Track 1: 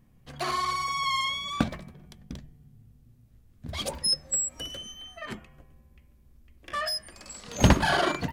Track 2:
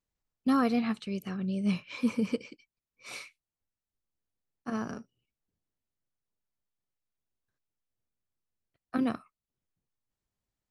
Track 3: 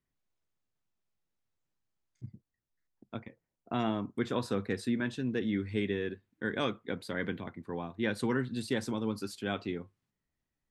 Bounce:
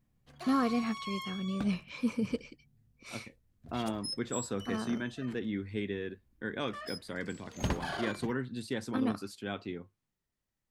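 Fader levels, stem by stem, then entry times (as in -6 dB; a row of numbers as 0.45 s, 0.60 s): -13.5 dB, -3.0 dB, -3.5 dB; 0.00 s, 0.00 s, 0.00 s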